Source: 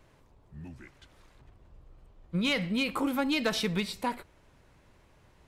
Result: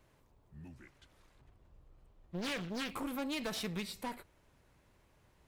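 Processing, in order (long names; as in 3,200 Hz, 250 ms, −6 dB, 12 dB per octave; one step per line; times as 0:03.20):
high-shelf EQ 12,000 Hz +11 dB
asymmetric clip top −34.5 dBFS
0:00.74–0:02.95: highs frequency-modulated by the lows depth 0.91 ms
level −7 dB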